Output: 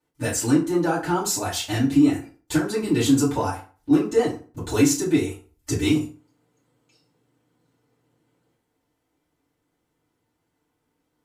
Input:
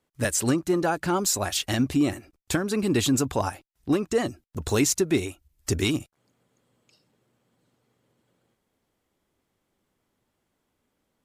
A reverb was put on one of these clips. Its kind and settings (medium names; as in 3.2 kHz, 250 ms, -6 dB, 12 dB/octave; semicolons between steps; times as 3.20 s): FDN reverb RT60 0.39 s, low-frequency decay 1×, high-frequency decay 0.7×, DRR -10 dB; trim -9.5 dB